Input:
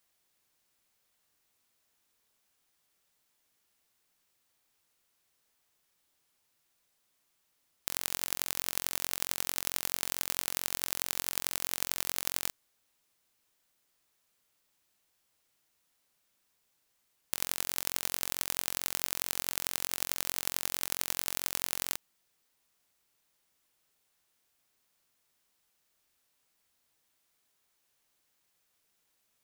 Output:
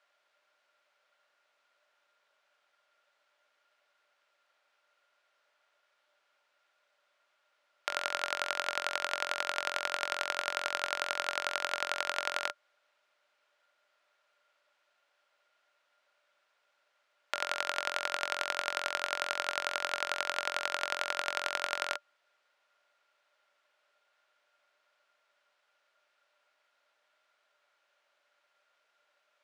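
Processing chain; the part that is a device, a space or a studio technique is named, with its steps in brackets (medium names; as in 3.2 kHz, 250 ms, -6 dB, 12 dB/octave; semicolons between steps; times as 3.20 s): tin-can telephone (band-pass 700–2800 Hz; small resonant body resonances 590/1400 Hz, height 15 dB, ringing for 70 ms); trim +8 dB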